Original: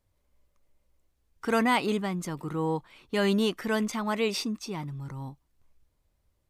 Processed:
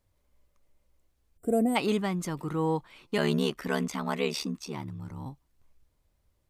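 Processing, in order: 1.38–1.76 spectral gain 750–7100 Hz -26 dB; 3.17–5.26 ring modulator 36 Hz; stuck buffer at 3.07, samples 256, times 8; gain +1 dB

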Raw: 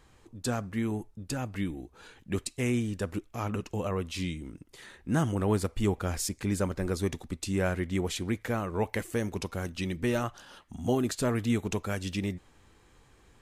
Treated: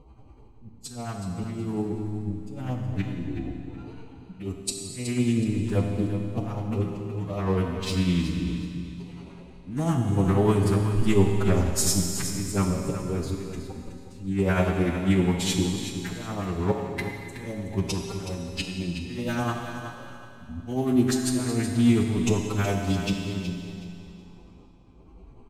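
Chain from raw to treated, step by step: Wiener smoothing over 25 samples; in parallel at -0.5 dB: compressor 10:1, threshold -36 dBFS, peak gain reduction 14.5 dB; on the sum: auto swell 0.23 s; LFO notch square 9.9 Hz 540–1600 Hz; time stretch by phase-locked vocoder 1.9×; tremolo 10 Hz, depth 50%; feedback echo 0.371 s, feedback 27%, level -10.5 dB; on a send at -2 dB: reverb RT60 2.5 s, pre-delay 7 ms; on the sum: gain +7 dB

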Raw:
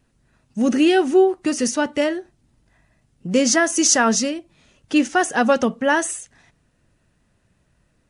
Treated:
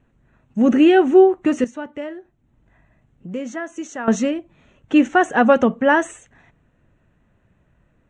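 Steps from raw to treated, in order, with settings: 1.64–4.08 compressor 1.5:1, threshold -53 dBFS, peak gain reduction 14.5 dB; running mean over 9 samples; gain +3.5 dB

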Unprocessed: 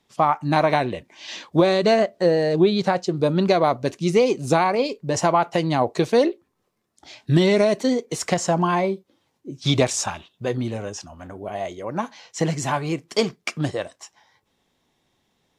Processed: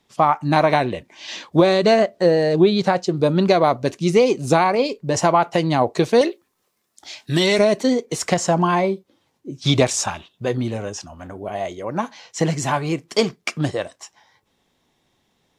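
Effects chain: 6.21–7.59 tilt +2.5 dB/oct; gain +2.5 dB

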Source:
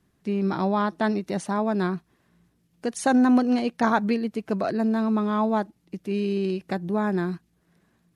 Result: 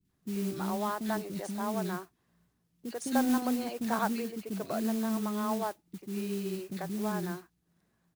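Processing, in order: three bands offset in time lows, highs, mids 50/90 ms, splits 350/2200 Hz; modulation noise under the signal 15 dB; gain -7.5 dB

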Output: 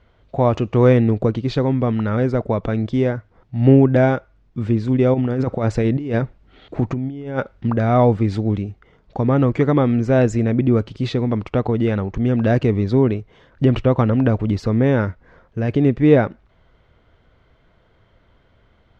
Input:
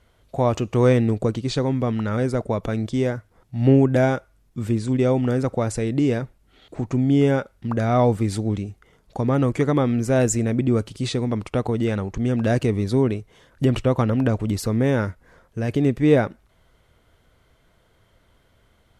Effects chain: 5.14–7.7 negative-ratio compressor -23 dBFS, ratio -0.5; air absorption 200 m; gain +4 dB

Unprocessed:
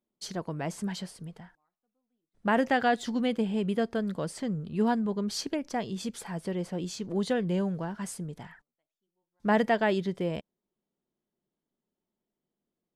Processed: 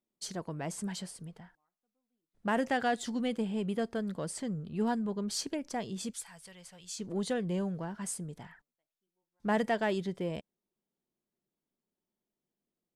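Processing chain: 6.13–6.99 passive tone stack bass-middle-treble 10-0-10; in parallel at -10 dB: soft clip -28.5 dBFS, distortion -8 dB; on the sum: dynamic EQ 8600 Hz, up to +8 dB, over -57 dBFS, Q 1.2; gain -6 dB

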